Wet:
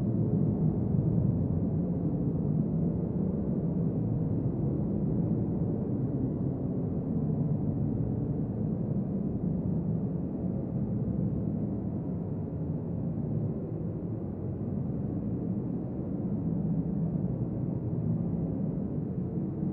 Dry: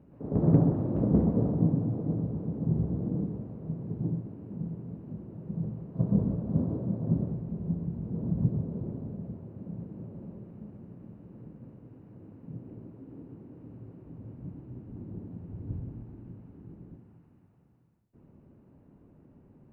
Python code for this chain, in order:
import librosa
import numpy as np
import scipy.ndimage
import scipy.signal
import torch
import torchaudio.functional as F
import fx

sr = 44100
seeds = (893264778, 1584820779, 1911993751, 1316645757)

y = fx.bin_compress(x, sr, power=0.4)
y = fx.vibrato(y, sr, rate_hz=11.0, depth_cents=23.0)
y = fx.paulstretch(y, sr, seeds[0], factor=14.0, window_s=0.1, from_s=8.51)
y = y * librosa.db_to_amplitude(-6.0)